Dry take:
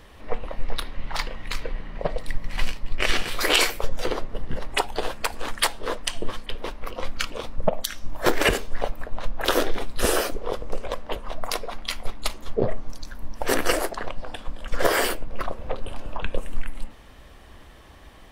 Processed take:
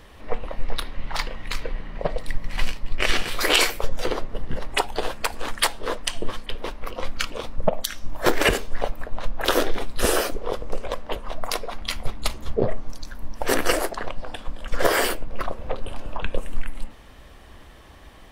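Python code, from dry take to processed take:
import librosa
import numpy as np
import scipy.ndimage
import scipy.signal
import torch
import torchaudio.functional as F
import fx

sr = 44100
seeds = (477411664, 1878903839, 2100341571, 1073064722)

y = fx.peak_eq(x, sr, hz=85.0, db=9.5, octaves=2.1, at=(11.81, 12.57))
y = F.gain(torch.from_numpy(y), 1.0).numpy()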